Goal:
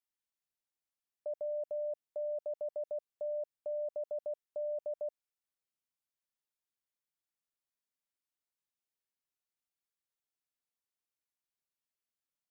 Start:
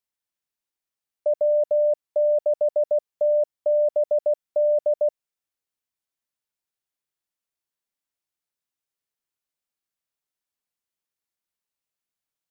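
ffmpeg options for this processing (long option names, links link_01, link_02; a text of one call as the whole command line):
ffmpeg -i in.wav -af "alimiter=level_in=1.5dB:limit=-24dB:level=0:latency=1:release=35,volume=-1.5dB,volume=-7.5dB" out.wav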